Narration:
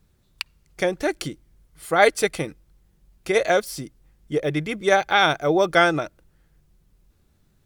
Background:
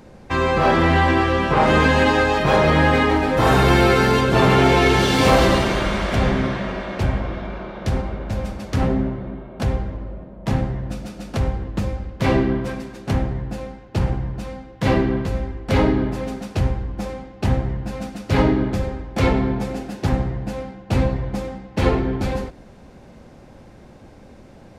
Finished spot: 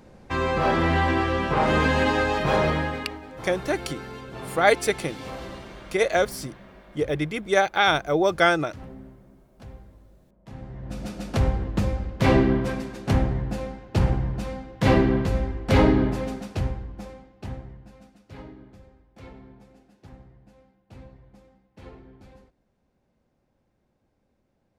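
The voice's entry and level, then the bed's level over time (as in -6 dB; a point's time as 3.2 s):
2.65 s, -2.0 dB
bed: 2.64 s -5.5 dB
3.21 s -22 dB
10.5 s -22 dB
11.06 s -0.5 dB
16.06 s -0.5 dB
18.54 s -27 dB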